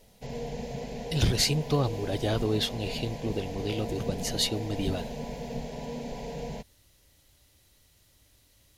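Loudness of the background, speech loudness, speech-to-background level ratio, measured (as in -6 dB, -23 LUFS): -37.5 LUFS, -29.5 LUFS, 8.0 dB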